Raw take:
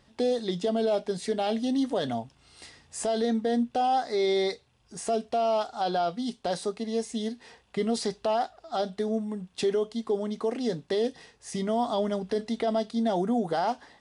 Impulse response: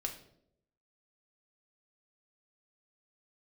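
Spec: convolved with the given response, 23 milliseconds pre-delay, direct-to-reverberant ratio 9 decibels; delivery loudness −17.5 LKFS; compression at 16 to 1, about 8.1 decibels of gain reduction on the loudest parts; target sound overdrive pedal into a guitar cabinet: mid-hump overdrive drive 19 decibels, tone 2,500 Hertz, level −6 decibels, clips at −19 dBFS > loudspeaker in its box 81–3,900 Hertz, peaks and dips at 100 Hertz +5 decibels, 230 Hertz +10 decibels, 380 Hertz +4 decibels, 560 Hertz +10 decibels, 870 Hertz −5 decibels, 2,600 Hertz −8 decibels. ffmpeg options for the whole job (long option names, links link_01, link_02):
-filter_complex "[0:a]acompressor=threshold=-30dB:ratio=16,asplit=2[link_01][link_02];[1:a]atrim=start_sample=2205,adelay=23[link_03];[link_02][link_03]afir=irnorm=-1:irlink=0,volume=-9.5dB[link_04];[link_01][link_04]amix=inputs=2:normalize=0,asplit=2[link_05][link_06];[link_06]highpass=frequency=720:poles=1,volume=19dB,asoftclip=type=tanh:threshold=-19dB[link_07];[link_05][link_07]amix=inputs=2:normalize=0,lowpass=frequency=2500:poles=1,volume=-6dB,highpass=81,equalizer=frequency=100:width_type=q:width=4:gain=5,equalizer=frequency=230:width_type=q:width=4:gain=10,equalizer=frequency=380:width_type=q:width=4:gain=4,equalizer=frequency=560:width_type=q:width=4:gain=10,equalizer=frequency=870:width_type=q:width=4:gain=-5,equalizer=frequency=2600:width_type=q:width=4:gain=-8,lowpass=frequency=3900:width=0.5412,lowpass=frequency=3900:width=1.3066,volume=7.5dB"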